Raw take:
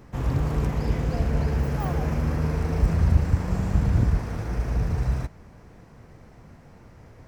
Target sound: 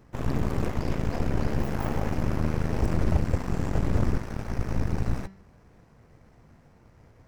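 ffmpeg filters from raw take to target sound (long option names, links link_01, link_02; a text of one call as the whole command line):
ffmpeg -i in.wav -af "aeval=exprs='0.398*(cos(1*acos(clip(val(0)/0.398,-1,1)))-cos(1*PI/2))+0.126*(cos(8*acos(clip(val(0)/0.398,-1,1)))-cos(8*PI/2))':channel_layout=same,bandreject=frequency=192.6:width_type=h:width=4,bandreject=frequency=385.2:width_type=h:width=4,bandreject=frequency=577.8:width_type=h:width=4,bandreject=frequency=770.4:width_type=h:width=4,bandreject=frequency=963:width_type=h:width=4,bandreject=frequency=1155.6:width_type=h:width=4,bandreject=frequency=1348.2:width_type=h:width=4,bandreject=frequency=1540.8:width_type=h:width=4,bandreject=frequency=1733.4:width_type=h:width=4,bandreject=frequency=1926:width_type=h:width=4,bandreject=frequency=2118.6:width_type=h:width=4,bandreject=frequency=2311.2:width_type=h:width=4,bandreject=frequency=2503.8:width_type=h:width=4,bandreject=frequency=2696.4:width_type=h:width=4,bandreject=frequency=2889:width_type=h:width=4,bandreject=frequency=3081.6:width_type=h:width=4,bandreject=frequency=3274.2:width_type=h:width=4,bandreject=frequency=3466.8:width_type=h:width=4,bandreject=frequency=3659.4:width_type=h:width=4,bandreject=frequency=3852:width_type=h:width=4,bandreject=frequency=4044.6:width_type=h:width=4,bandreject=frequency=4237.2:width_type=h:width=4,bandreject=frequency=4429.8:width_type=h:width=4,bandreject=frequency=4622.4:width_type=h:width=4,bandreject=frequency=4815:width_type=h:width=4,bandreject=frequency=5007.6:width_type=h:width=4,bandreject=frequency=5200.2:width_type=h:width=4,bandreject=frequency=5392.8:width_type=h:width=4,bandreject=frequency=5585.4:width_type=h:width=4,bandreject=frequency=5778:width_type=h:width=4,volume=-7dB" out.wav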